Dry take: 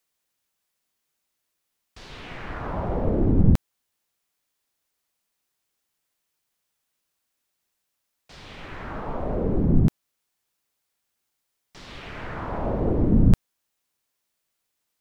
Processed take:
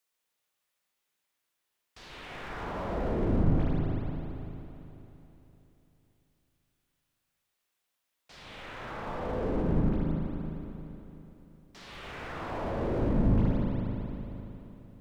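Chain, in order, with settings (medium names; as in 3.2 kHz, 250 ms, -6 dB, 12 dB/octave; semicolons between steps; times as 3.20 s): bass shelf 320 Hz -7.5 dB; spring tank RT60 3.4 s, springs 38/56 ms, chirp 20 ms, DRR -2.5 dB; slew-rate limiter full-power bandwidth 26 Hz; trim -4 dB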